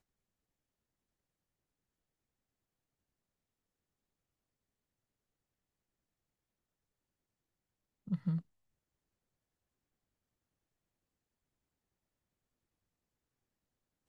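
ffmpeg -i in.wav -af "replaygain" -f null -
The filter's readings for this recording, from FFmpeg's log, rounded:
track_gain = +64.0 dB
track_peak = 0.039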